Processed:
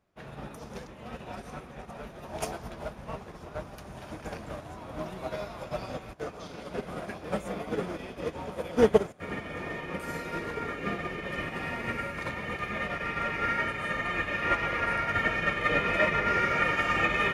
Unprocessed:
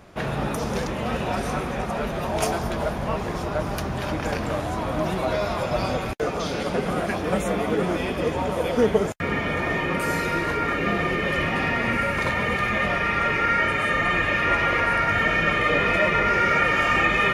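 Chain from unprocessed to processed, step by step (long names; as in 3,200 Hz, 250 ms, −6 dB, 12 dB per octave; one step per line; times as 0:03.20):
feedback delay with all-pass diffusion 1,694 ms, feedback 45%, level −8.5 dB
expander for the loud parts 2.5 to 1, over −33 dBFS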